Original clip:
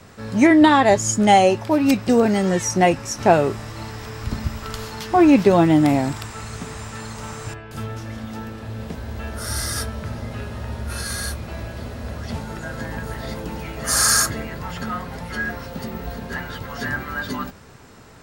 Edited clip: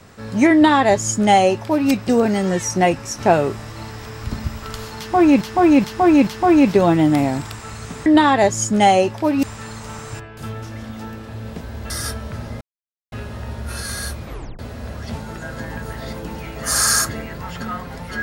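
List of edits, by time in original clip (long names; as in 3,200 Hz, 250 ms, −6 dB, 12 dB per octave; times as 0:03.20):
0:00.53–0:01.90: duplicate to 0:06.77
0:04.98–0:05.41: repeat, 4 plays
0:09.24–0:09.62: remove
0:10.33: splice in silence 0.51 s
0:11.45: tape stop 0.35 s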